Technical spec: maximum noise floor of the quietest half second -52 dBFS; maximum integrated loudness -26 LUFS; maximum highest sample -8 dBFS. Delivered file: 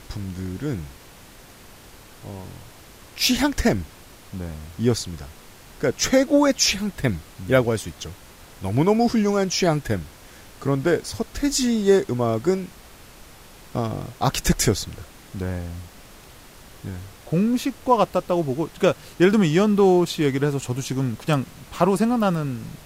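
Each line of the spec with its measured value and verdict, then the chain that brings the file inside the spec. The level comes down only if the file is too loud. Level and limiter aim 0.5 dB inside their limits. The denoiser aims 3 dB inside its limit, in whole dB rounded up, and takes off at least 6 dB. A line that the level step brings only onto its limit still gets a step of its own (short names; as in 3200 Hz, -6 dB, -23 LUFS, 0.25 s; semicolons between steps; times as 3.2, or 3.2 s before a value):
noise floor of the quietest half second -46 dBFS: fail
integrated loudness -22.0 LUFS: fail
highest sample -5.5 dBFS: fail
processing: denoiser 6 dB, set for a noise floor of -46 dBFS; gain -4.5 dB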